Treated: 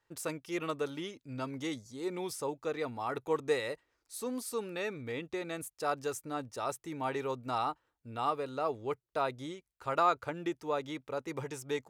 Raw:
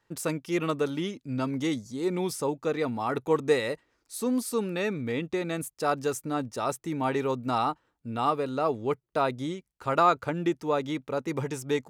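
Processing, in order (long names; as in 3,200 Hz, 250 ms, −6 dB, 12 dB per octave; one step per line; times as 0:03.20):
parametric band 200 Hz −8.5 dB 1.1 octaves
level −5.5 dB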